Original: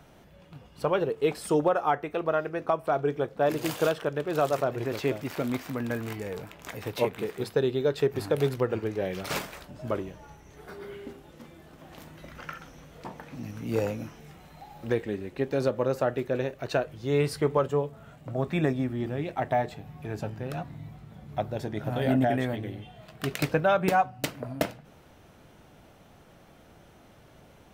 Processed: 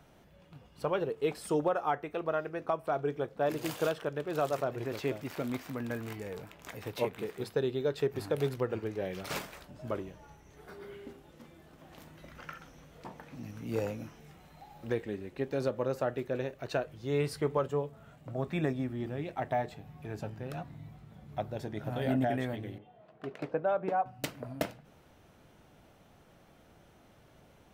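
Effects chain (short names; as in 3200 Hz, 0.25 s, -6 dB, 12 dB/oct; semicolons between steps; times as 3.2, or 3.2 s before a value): 22.78–24.06 band-pass 530 Hz, Q 0.84; gain -5.5 dB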